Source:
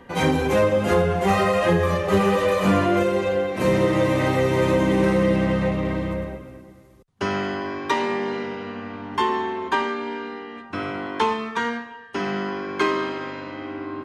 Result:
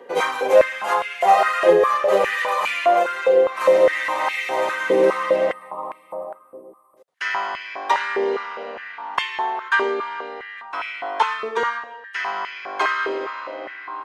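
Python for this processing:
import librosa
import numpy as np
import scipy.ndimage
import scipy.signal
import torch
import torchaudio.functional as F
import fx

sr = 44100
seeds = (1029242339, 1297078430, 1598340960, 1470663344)

y = fx.spec_box(x, sr, start_s=5.52, length_s=1.45, low_hz=1300.0, high_hz=7900.0, gain_db=-23)
y = fx.filter_held_highpass(y, sr, hz=4.9, low_hz=450.0, high_hz=2300.0)
y = F.gain(torch.from_numpy(y), -1.0).numpy()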